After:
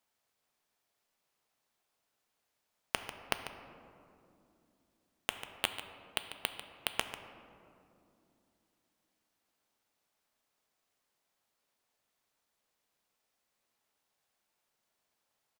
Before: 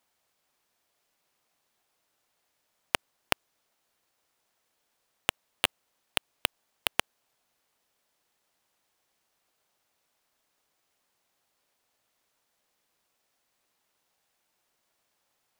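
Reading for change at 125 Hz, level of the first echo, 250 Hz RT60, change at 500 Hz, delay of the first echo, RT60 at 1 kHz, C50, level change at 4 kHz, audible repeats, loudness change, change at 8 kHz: -5.0 dB, -12.5 dB, 4.2 s, -5.5 dB, 0.144 s, 2.4 s, 8.0 dB, -6.0 dB, 1, -6.5 dB, -6.0 dB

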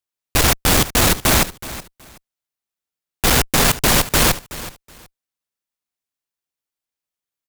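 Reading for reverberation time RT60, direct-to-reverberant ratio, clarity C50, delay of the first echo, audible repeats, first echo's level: none, none, none, 0.373 s, 2, -16.0 dB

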